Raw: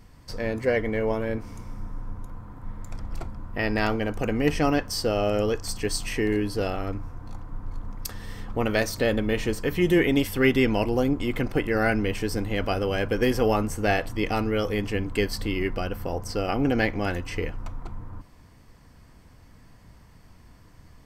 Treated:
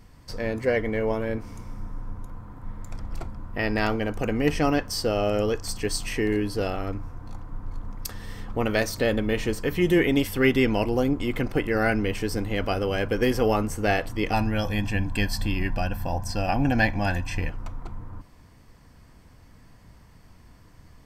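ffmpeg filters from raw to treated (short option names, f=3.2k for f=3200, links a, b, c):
-filter_complex "[0:a]asettb=1/sr,asplit=3[a][b][c];[a]atrim=end=14.334[d];[b]atrim=start=14.33:end=17.49,asetpts=PTS-STARTPTS,afade=t=in:d=0.004:c=qsin,afade=t=out:st=3.156:d=0.004:c=qsin,aecho=1:1:1.2:0.77,atrim=end_sample=139356[e];[c]atrim=start=17.486[f];[d][e]acrossfade=d=0.004:c1=hsin:c2=qsin[g];[g][f]acrossfade=d=0.004:c1=qsin:c2=hsin"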